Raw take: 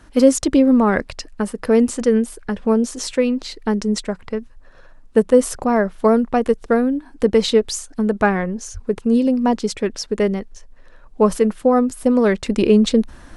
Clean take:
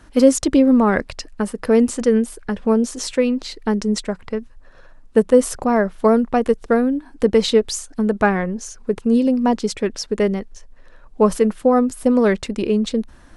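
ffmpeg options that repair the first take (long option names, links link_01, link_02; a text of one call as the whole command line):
ffmpeg -i in.wav -filter_complex "[0:a]asplit=3[link_01][link_02][link_03];[link_01]afade=type=out:start_time=8.73:duration=0.02[link_04];[link_02]highpass=frequency=140:width=0.5412,highpass=frequency=140:width=1.3066,afade=type=in:start_time=8.73:duration=0.02,afade=type=out:start_time=8.85:duration=0.02[link_05];[link_03]afade=type=in:start_time=8.85:duration=0.02[link_06];[link_04][link_05][link_06]amix=inputs=3:normalize=0,asetnsamples=nb_out_samples=441:pad=0,asendcmd='12.46 volume volume -5.5dB',volume=0dB" out.wav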